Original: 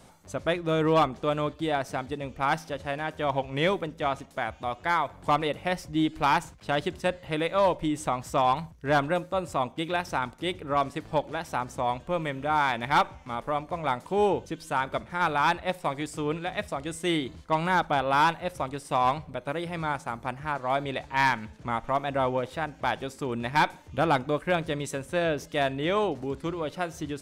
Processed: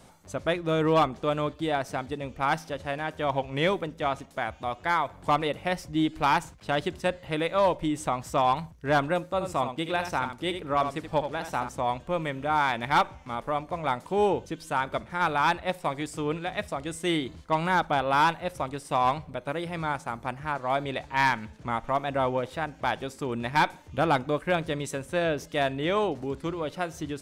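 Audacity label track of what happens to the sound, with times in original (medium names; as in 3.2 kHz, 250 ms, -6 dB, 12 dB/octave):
9.330000	11.690000	delay 76 ms -8.5 dB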